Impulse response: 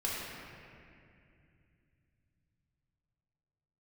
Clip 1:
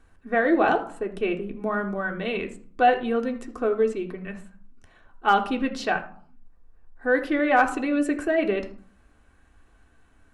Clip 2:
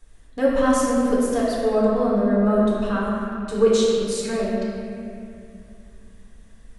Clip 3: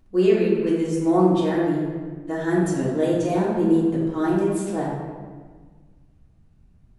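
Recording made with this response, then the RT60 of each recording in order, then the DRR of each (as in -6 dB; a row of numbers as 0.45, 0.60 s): 2; 0.55, 2.5, 1.5 s; 2.5, -6.5, -8.0 dB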